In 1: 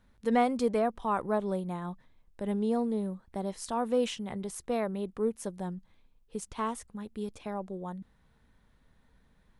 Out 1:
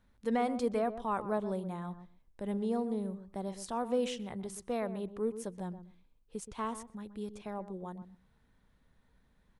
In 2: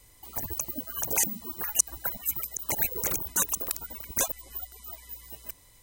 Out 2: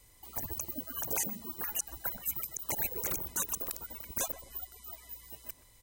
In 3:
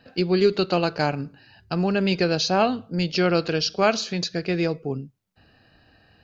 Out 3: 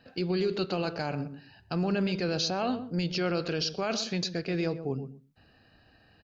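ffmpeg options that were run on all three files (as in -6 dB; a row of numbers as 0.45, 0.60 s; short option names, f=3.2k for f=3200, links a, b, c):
-filter_complex "[0:a]alimiter=limit=-16.5dB:level=0:latency=1:release=18,asplit=2[a][b];[b]adelay=125,lowpass=f=860:p=1,volume=-10dB,asplit=2[c][d];[d]adelay=125,lowpass=f=860:p=1,volume=0.17[e];[a][c][e]amix=inputs=3:normalize=0,volume=-4dB"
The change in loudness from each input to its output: -4.0, -6.5, -7.5 LU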